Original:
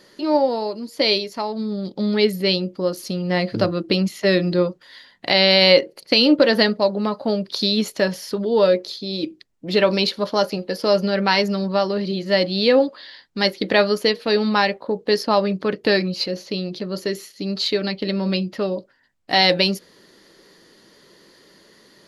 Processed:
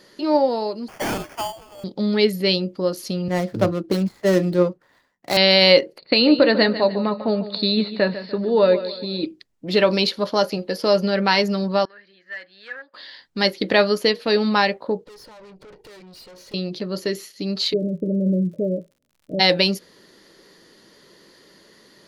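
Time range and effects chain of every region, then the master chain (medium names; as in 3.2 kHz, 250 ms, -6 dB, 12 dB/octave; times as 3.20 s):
0.88–1.84 s: steep high-pass 600 Hz 96 dB/octave + sample-rate reducer 3.9 kHz + hard clipper -20.5 dBFS
3.28–5.37 s: median filter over 15 samples + three bands expanded up and down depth 70%
5.98–9.26 s: steep low-pass 4.5 kHz 96 dB/octave + band-stop 3.2 kHz, Q 5.2 + feedback delay 147 ms, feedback 39%, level -13 dB
11.85–12.94 s: hard clipper -12 dBFS + band-pass filter 1.7 kHz, Q 8.5
15.04–16.54 s: compression 10:1, threshold -32 dBFS + comb 2.1 ms, depth 61% + valve stage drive 42 dB, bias 0.8
17.72–19.39 s: Chebyshev low-pass 640 Hz, order 10 + peaking EQ 170 Hz +11.5 dB 0.23 oct + crackle 79 per s -46 dBFS
whole clip: none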